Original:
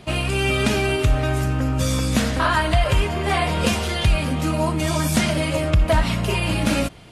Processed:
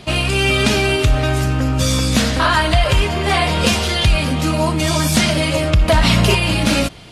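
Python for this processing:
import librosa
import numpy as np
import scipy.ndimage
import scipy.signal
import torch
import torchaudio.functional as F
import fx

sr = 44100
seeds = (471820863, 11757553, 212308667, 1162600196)

p1 = fx.peak_eq(x, sr, hz=4400.0, db=5.5, octaves=1.4)
p2 = 10.0 ** (-15.0 / 20.0) * np.tanh(p1 / 10.0 ** (-15.0 / 20.0))
p3 = p1 + (p2 * librosa.db_to_amplitude(-6.0))
p4 = fx.env_flatten(p3, sr, amount_pct=70, at=(5.88, 6.35))
y = p4 * librosa.db_to_amplitude(1.0)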